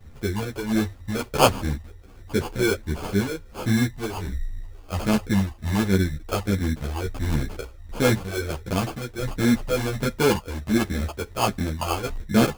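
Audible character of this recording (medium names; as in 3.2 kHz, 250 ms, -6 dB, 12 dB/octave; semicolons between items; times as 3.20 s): phasing stages 6, 1.4 Hz, lowest notch 180–1600 Hz; aliases and images of a low sample rate 1.9 kHz, jitter 0%; a shimmering, thickened sound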